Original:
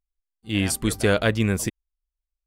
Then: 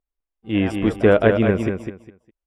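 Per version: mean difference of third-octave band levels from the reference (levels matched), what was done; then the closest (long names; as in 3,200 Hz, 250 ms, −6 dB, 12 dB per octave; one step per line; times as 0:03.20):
8.5 dB: one scale factor per block 7 bits
Savitzky-Golay smoothing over 25 samples
parametric band 470 Hz +10 dB 2.7 octaves
on a send: repeating echo 204 ms, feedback 22%, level −6.5 dB
on the sum: level −2.5 dB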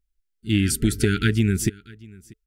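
6.0 dB: brick-wall band-stop 440–1,300 Hz
low-shelf EQ 400 Hz +6 dB
downward compressor, threshold −19 dBFS, peak gain reduction 7.5 dB
on a send: single-tap delay 639 ms −23.5 dB
on the sum: level +3.5 dB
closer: second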